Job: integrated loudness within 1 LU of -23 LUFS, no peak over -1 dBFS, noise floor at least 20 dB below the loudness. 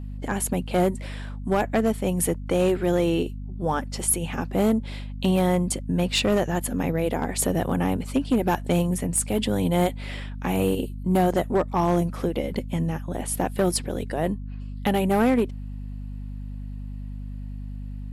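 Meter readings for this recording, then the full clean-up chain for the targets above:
clipped samples 0.7%; clipping level -14.5 dBFS; hum 50 Hz; highest harmonic 250 Hz; hum level -32 dBFS; loudness -24.5 LUFS; peak level -14.5 dBFS; loudness target -23.0 LUFS
-> clip repair -14.5 dBFS; hum notches 50/100/150/200/250 Hz; trim +1.5 dB

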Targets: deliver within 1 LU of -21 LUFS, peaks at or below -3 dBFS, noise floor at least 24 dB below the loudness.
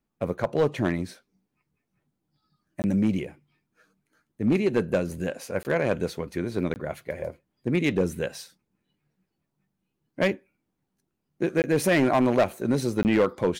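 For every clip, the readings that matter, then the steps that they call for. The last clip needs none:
clipped samples 0.9%; clipping level -15.0 dBFS; dropouts 5; longest dropout 19 ms; loudness -26.0 LUFS; peak level -15.0 dBFS; loudness target -21.0 LUFS
-> clip repair -15 dBFS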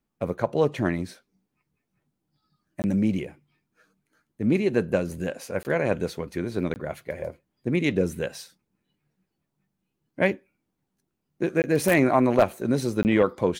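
clipped samples 0.0%; dropouts 5; longest dropout 19 ms
-> interpolate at 2.82/5.63/6.74/11.62/13.03 s, 19 ms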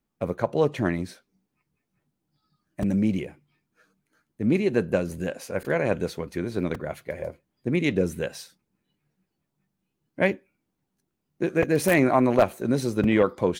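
dropouts 0; loudness -25.5 LUFS; peak level -6.0 dBFS; loudness target -21.0 LUFS
-> trim +4.5 dB; peak limiter -3 dBFS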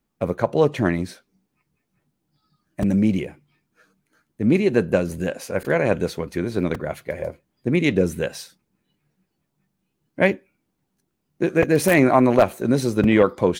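loudness -21.0 LUFS; peak level -3.0 dBFS; noise floor -76 dBFS

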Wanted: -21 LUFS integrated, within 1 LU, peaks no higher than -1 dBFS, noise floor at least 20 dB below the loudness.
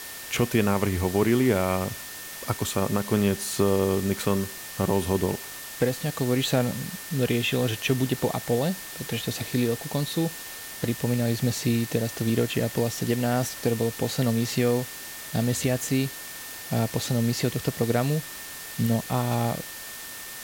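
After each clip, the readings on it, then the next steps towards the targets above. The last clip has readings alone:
steady tone 1.8 kHz; tone level -45 dBFS; noise floor -39 dBFS; noise floor target -47 dBFS; loudness -26.5 LUFS; peak level -9.5 dBFS; loudness target -21.0 LUFS
-> band-stop 1.8 kHz, Q 30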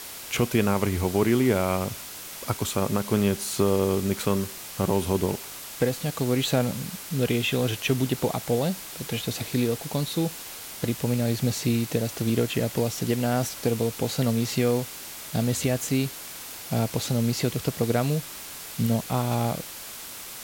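steady tone not found; noise floor -40 dBFS; noise floor target -47 dBFS
-> noise print and reduce 7 dB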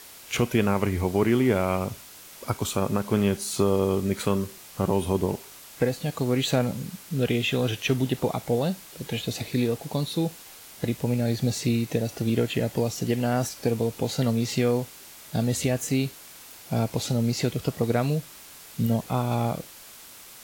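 noise floor -46 dBFS; noise floor target -47 dBFS
-> noise print and reduce 6 dB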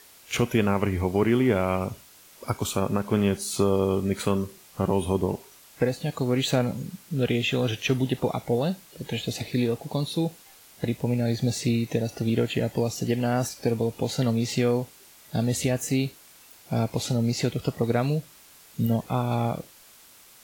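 noise floor -52 dBFS; loudness -26.5 LUFS; peak level -10.0 dBFS; loudness target -21.0 LUFS
-> trim +5.5 dB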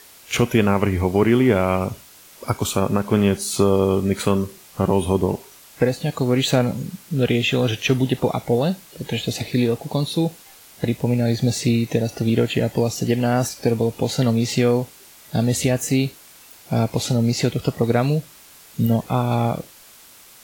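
loudness -21.0 LUFS; peak level -4.5 dBFS; noise floor -47 dBFS

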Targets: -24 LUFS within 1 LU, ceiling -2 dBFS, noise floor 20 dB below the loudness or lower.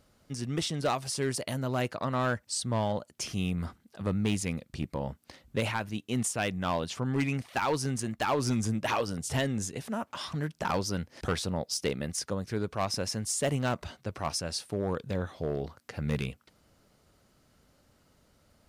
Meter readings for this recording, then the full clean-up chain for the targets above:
clipped samples 0.9%; clipping level -22.0 dBFS; loudness -32.0 LUFS; peak level -22.0 dBFS; loudness target -24.0 LUFS
-> clip repair -22 dBFS; trim +8 dB

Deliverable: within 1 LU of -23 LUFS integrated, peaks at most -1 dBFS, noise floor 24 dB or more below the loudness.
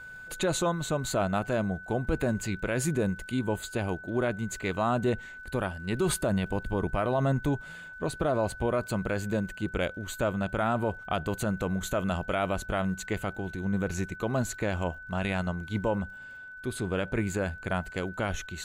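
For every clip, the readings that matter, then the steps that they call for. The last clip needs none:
tick rate 51 per s; steady tone 1.5 kHz; tone level -42 dBFS; loudness -30.5 LUFS; peak level -16.5 dBFS; loudness target -23.0 LUFS
-> de-click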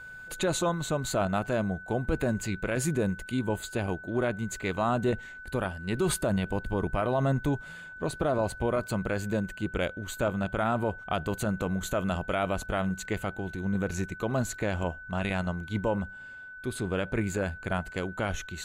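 tick rate 0.11 per s; steady tone 1.5 kHz; tone level -42 dBFS
-> band-stop 1.5 kHz, Q 30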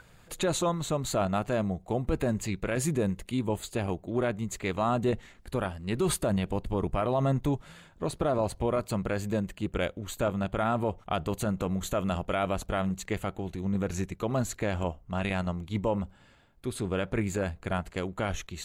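steady tone not found; loudness -31.0 LUFS; peak level -17.0 dBFS; loudness target -23.0 LUFS
-> trim +8 dB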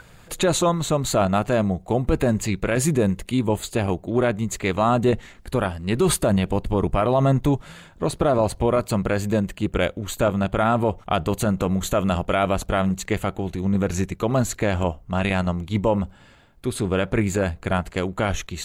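loudness -23.0 LUFS; peak level -9.0 dBFS; noise floor -49 dBFS

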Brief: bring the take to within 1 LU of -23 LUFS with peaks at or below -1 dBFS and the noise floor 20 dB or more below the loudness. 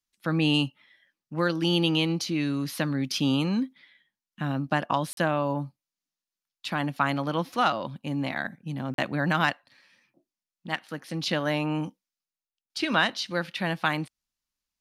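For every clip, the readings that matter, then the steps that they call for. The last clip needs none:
dropouts 2; longest dropout 42 ms; loudness -27.5 LUFS; peak level -10.0 dBFS; loudness target -23.0 LUFS
-> interpolate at 5.13/8.94 s, 42 ms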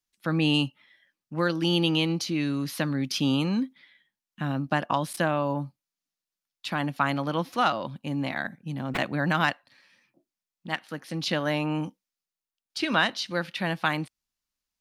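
dropouts 0; loudness -27.5 LUFS; peak level -10.0 dBFS; loudness target -23.0 LUFS
-> trim +4.5 dB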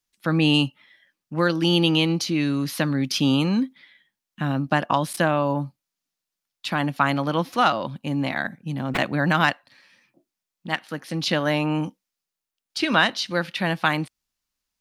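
loudness -23.0 LUFS; peak level -5.5 dBFS; noise floor -86 dBFS

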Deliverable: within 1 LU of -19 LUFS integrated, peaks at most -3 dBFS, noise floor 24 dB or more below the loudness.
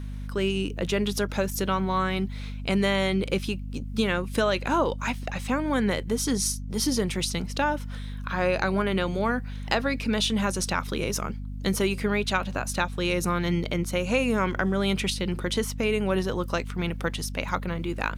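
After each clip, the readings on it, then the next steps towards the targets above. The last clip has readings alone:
hum 50 Hz; highest harmonic 250 Hz; hum level -32 dBFS; loudness -27.0 LUFS; peak level -6.5 dBFS; loudness target -19.0 LUFS
-> de-hum 50 Hz, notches 5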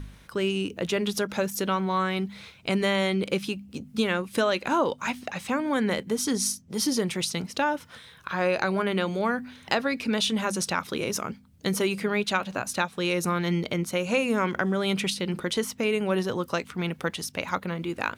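hum not found; loudness -27.5 LUFS; peak level -6.5 dBFS; loudness target -19.0 LUFS
-> trim +8.5 dB; peak limiter -3 dBFS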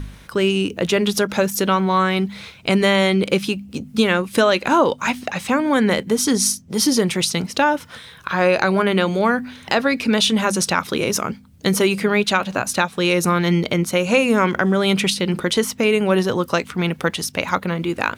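loudness -19.0 LUFS; peak level -3.0 dBFS; noise floor -44 dBFS

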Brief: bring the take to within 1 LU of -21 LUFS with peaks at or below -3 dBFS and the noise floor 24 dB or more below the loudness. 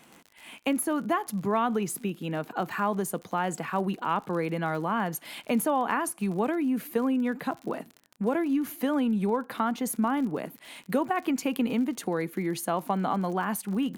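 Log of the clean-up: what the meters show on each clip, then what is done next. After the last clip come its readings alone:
tick rate 47 per s; loudness -29.0 LUFS; peak level -12.5 dBFS; loudness target -21.0 LUFS
-> de-click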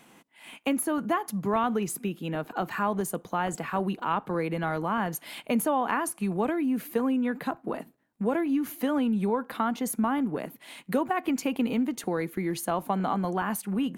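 tick rate 1.0 per s; loudness -29.0 LUFS; peak level -12.5 dBFS; loudness target -21.0 LUFS
-> trim +8 dB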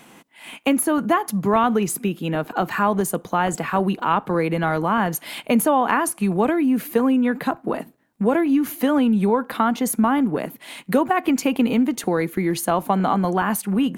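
loudness -21.0 LUFS; peak level -4.5 dBFS; noise floor -52 dBFS

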